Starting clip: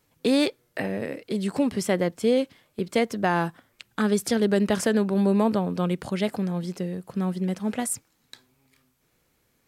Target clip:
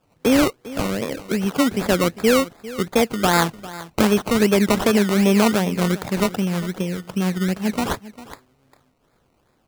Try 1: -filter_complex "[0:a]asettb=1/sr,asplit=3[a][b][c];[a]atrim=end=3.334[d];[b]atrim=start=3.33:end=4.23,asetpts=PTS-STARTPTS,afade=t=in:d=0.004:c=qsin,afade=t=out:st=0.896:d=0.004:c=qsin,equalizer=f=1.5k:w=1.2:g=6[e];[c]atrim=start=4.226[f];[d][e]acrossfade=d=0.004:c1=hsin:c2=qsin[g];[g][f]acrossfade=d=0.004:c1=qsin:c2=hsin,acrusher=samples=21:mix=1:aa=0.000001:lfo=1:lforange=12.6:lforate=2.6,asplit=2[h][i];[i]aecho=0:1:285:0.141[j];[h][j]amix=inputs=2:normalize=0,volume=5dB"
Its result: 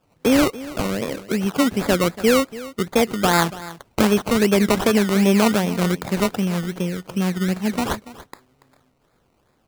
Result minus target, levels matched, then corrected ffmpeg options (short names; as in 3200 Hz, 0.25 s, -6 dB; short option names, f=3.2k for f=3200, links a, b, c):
echo 0.115 s early
-filter_complex "[0:a]asettb=1/sr,asplit=3[a][b][c];[a]atrim=end=3.334[d];[b]atrim=start=3.33:end=4.23,asetpts=PTS-STARTPTS,afade=t=in:d=0.004:c=qsin,afade=t=out:st=0.896:d=0.004:c=qsin,equalizer=f=1.5k:w=1.2:g=6[e];[c]atrim=start=4.226[f];[d][e]acrossfade=d=0.004:c1=hsin:c2=qsin[g];[g][f]acrossfade=d=0.004:c1=qsin:c2=hsin,acrusher=samples=21:mix=1:aa=0.000001:lfo=1:lforange=12.6:lforate=2.6,asplit=2[h][i];[i]aecho=0:1:400:0.141[j];[h][j]amix=inputs=2:normalize=0,volume=5dB"